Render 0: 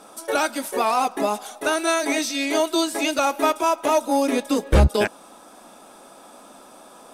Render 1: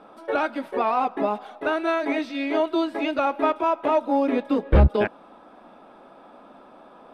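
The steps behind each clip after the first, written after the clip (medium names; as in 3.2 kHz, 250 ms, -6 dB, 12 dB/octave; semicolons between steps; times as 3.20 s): distance through air 420 m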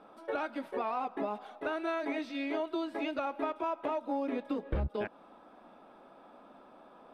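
compression 5:1, threshold -23 dBFS, peak gain reduction 11 dB; trim -7.5 dB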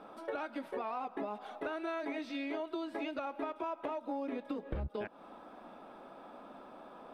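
compression 3:1, threshold -42 dBFS, peak gain reduction 10.5 dB; trim +4 dB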